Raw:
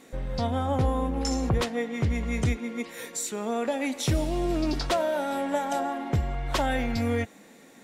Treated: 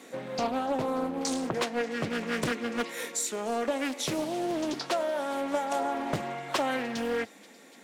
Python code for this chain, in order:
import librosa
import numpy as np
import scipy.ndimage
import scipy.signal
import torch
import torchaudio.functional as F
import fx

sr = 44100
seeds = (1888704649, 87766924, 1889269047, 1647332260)

p1 = scipy.signal.sosfilt(scipy.signal.bessel(6, 250.0, 'highpass', norm='mag', fs=sr, output='sos'), x)
p2 = fx.rider(p1, sr, range_db=5, speed_s=0.5)
p3 = p2 + fx.echo_wet_highpass(p2, sr, ms=294, feedback_pct=85, hz=3100.0, wet_db=-21.5, dry=0)
y = fx.doppler_dist(p3, sr, depth_ms=0.64)